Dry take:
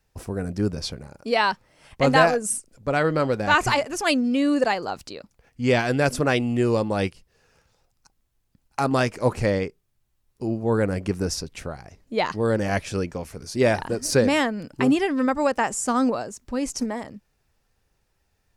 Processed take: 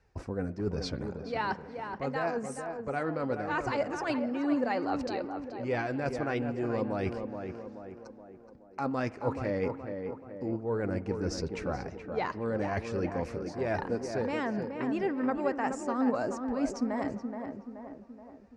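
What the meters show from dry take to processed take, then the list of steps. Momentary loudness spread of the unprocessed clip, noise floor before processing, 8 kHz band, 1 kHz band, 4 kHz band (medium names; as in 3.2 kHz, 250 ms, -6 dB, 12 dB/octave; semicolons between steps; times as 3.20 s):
13 LU, -71 dBFS, -18.0 dB, -9.0 dB, -15.5 dB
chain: high-pass 42 Hz; peaking EQ 3.3 kHz -8.5 dB 0.56 oct; reverse; compression 6:1, threshold -34 dBFS, peak gain reduction 20 dB; reverse; flange 1.4 Hz, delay 2 ms, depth 2.2 ms, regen +53%; distance through air 140 m; on a send: tape echo 426 ms, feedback 58%, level -5 dB, low-pass 1.5 kHz; on the sum: spring tank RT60 1.6 s, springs 43 ms, chirp 70 ms, DRR 19 dB; trim +8.5 dB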